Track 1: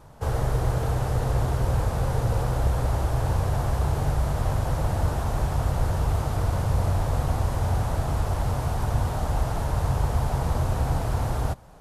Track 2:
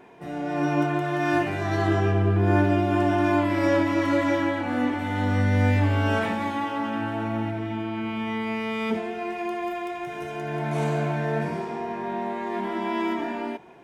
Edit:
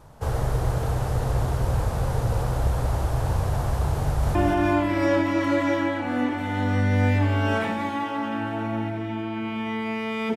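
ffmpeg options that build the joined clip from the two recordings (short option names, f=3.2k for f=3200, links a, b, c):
-filter_complex "[0:a]apad=whole_dur=10.36,atrim=end=10.36,atrim=end=4.352[a];[1:a]atrim=start=2.958:end=8.97[b];[a][b]acrossfade=d=0.004:c1=hsin:c2=hsin,asplit=2[c][d];[d]afade=t=in:st=4.03:d=0.01,afade=t=out:st=4.35:d=0.01,aecho=0:1:190|380|570|760|950|1140:0.595662|0.297831|0.148916|0.0744578|0.0372289|0.0186144[e];[c][e]amix=inputs=2:normalize=0"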